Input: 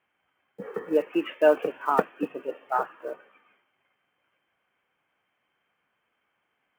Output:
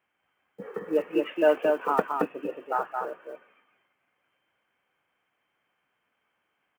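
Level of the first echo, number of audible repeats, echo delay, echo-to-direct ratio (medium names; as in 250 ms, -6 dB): -4.0 dB, 1, 222 ms, -4.0 dB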